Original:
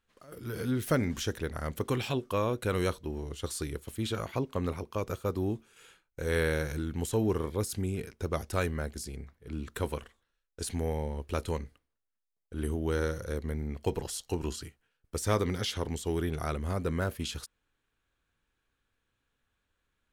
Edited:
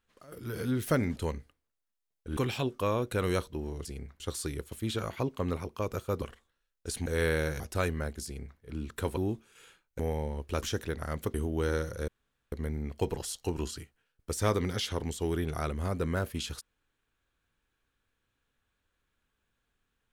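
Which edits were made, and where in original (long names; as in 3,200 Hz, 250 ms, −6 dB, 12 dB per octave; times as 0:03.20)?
0:01.16–0:01.88: swap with 0:11.42–0:12.63
0:05.38–0:06.20: swap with 0:09.95–0:10.79
0:06.74–0:08.38: remove
0:09.03–0:09.38: duplicate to 0:03.36
0:13.37: splice in room tone 0.44 s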